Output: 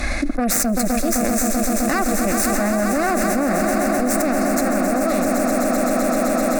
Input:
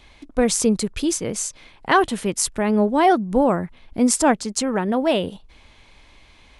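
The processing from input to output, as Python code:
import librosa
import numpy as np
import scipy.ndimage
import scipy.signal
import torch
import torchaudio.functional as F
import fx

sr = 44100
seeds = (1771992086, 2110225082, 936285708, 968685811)

p1 = fx.cheby_harmonics(x, sr, harmonics=(4, 8), levels_db=(-12, -15), full_scale_db=-2.5)
p2 = fx.fixed_phaser(p1, sr, hz=630.0, stages=8)
p3 = p2 + fx.echo_swell(p2, sr, ms=129, loudest=8, wet_db=-10, dry=0)
p4 = fx.env_flatten(p3, sr, amount_pct=100)
y = p4 * 10.0 ** (-9.0 / 20.0)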